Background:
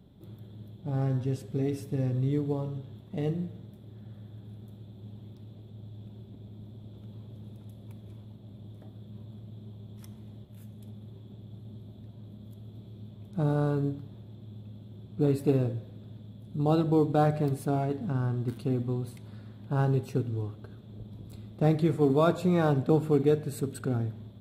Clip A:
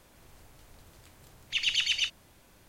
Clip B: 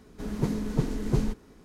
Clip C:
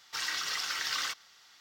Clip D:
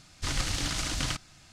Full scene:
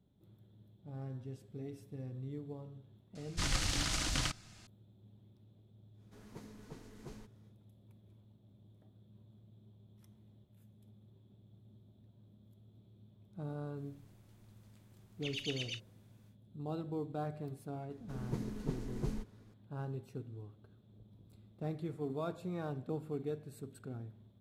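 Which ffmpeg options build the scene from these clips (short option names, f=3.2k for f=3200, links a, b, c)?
-filter_complex "[2:a]asplit=2[a][b];[0:a]volume=-15.5dB[c];[a]lowshelf=f=330:g=-11.5[d];[4:a]atrim=end=1.52,asetpts=PTS-STARTPTS,volume=-3.5dB,afade=t=in:d=0.004:c=hsin,afade=t=out:st=1.516:d=0.004:c=hsin,adelay=3150[e];[d]atrim=end=1.64,asetpts=PTS-STARTPTS,volume=-16.5dB,afade=t=in:d=0.1,afade=t=out:st=1.54:d=0.1,adelay=261513S[f];[1:a]atrim=end=2.68,asetpts=PTS-STARTPTS,volume=-14.5dB,afade=t=in:d=0.1,afade=t=out:st=2.58:d=0.1,adelay=13700[g];[b]atrim=end=1.64,asetpts=PTS-STARTPTS,volume=-12dB,afade=t=in:d=0.004:c=hsin,afade=t=out:st=1.636:d=0.004:c=hsin,adelay=17900[h];[c][e][f][g][h]amix=inputs=5:normalize=0"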